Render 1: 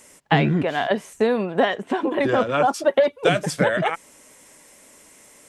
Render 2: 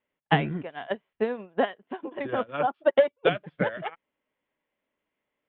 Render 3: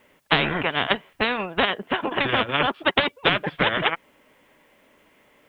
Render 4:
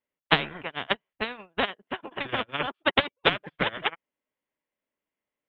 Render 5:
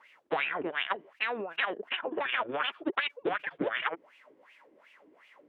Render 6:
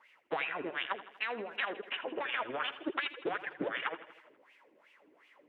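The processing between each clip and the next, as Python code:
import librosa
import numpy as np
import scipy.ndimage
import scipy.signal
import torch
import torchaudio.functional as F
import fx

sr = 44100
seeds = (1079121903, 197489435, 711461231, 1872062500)

y1 = scipy.signal.sosfilt(scipy.signal.ellip(4, 1.0, 50, 3300.0, 'lowpass', fs=sr, output='sos'), x)
y1 = fx.upward_expand(y1, sr, threshold_db=-32.0, expansion=2.5)
y2 = fx.spectral_comp(y1, sr, ratio=4.0)
y2 = y2 * 10.0 ** (4.5 / 20.0)
y3 = fx.upward_expand(y2, sr, threshold_db=-37.0, expansion=2.5)
y4 = fx.wah_lfo(y3, sr, hz=2.7, low_hz=310.0, high_hz=2700.0, q=4.6)
y4 = fx.env_flatten(y4, sr, amount_pct=70)
y4 = y4 * 10.0 ** (1.0 / 20.0)
y5 = fx.echo_feedback(y4, sr, ms=81, feedback_pct=59, wet_db=-14.5)
y5 = y5 * 10.0 ** (-4.5 / 20.0)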